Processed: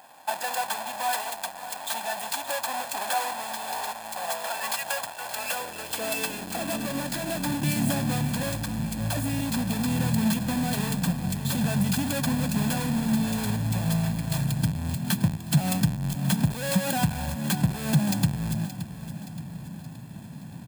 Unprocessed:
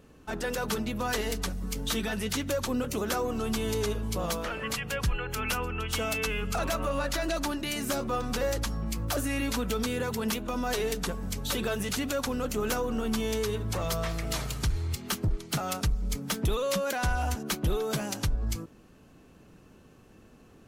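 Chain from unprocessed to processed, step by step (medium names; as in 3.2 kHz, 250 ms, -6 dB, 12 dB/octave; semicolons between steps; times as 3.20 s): square wave that keeps the level; tone controls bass +7 dB, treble +7 dB; comb 1.2 ms, depth 69%; compression 4:1, threshold -24 dBFS, peak gain reduction 12 dB; high-pass sweep 750 Hz -> 150 Hz, 5.08–7.55 s; peaking EQ 5.8 kHz -9 dB 0.25 oct; on a send: feedback delay 573 ms, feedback 50%, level -13 dB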